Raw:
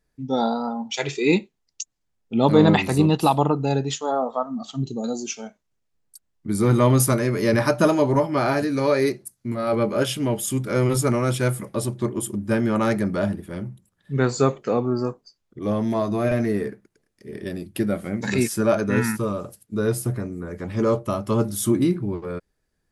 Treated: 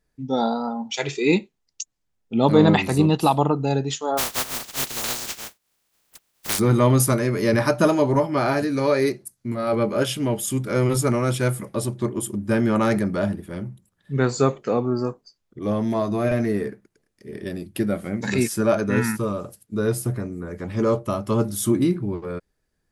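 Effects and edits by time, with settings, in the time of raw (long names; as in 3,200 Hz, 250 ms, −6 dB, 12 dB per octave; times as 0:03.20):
0:04.17–0:06.58: compressing power law on the bin magnitudes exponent 0.11
0:12.49–0:12.99: envelope flattener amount 50%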